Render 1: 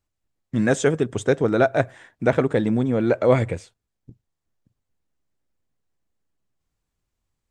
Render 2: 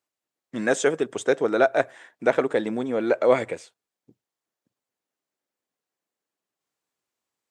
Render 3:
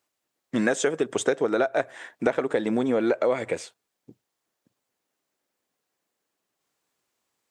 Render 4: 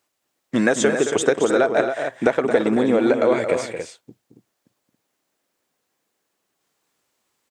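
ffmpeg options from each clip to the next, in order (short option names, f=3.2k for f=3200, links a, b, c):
-af "highpass=350"
-af "acompressor=threshold=-26dB:ratio=16,volume=7dB"
-af "aecho=1:1:221.6|277:0.355|0.398,volume=5dB"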